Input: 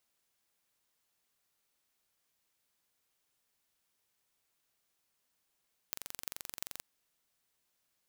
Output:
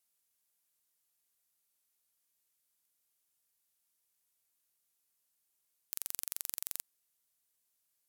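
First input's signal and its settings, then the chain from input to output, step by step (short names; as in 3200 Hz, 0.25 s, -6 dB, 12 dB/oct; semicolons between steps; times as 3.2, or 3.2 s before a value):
pulse train 23/s, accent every 8, -8.5 dBFS 0.90 s
bell 12000 Hz +13.5 dB 1.7 oct; level quantiser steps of 10 dB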